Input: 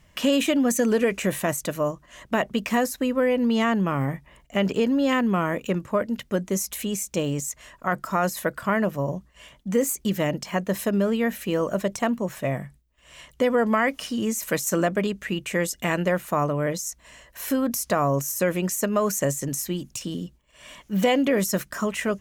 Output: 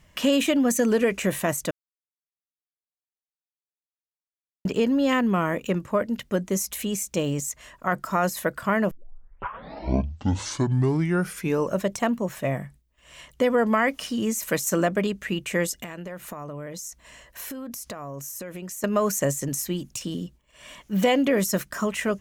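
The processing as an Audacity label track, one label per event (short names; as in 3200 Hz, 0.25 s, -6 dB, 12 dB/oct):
1.710000	4.650000	mute
8.910000	8.910000	tape start 2.94 s
15.830000	18.840000	compressor 12:1, threshold -32 dBFS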